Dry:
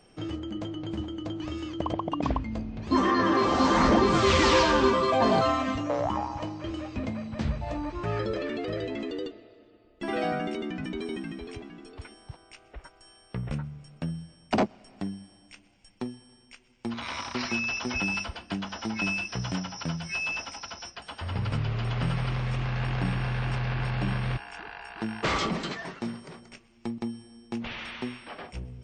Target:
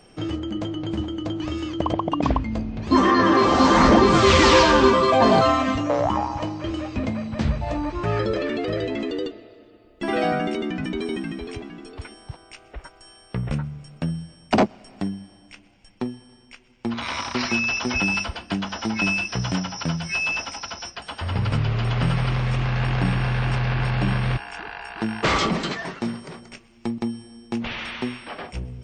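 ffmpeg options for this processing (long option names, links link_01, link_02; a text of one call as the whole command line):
ffmpeg -i in.wav -filter_complex "[0:a]asettb=1/sr,asplit=3[link_01][link_02][link_03];[link_01]atrim=end=15.084[link_04];[link_02]atrim=start=15.08:end=16.98,asetpts=PTS-STARTPTS,afade=type=in:duration=0.004:curve=qsin,afade=type=out:start_time=1.896:duration=0.004:curve=qsin,highshelf=frequency=6500:gain=-9.5[link_05];[link_03]atrim=start=16.976[link_06];[link_04][link_05]acrossfade=duration=0.004:curve1=hsin:curve2=qsin[link_07];[link_07][link_06]acrossfade=duration=0.004:curve1=qsin:curve2=hsin,volume=6.5dB" out.wav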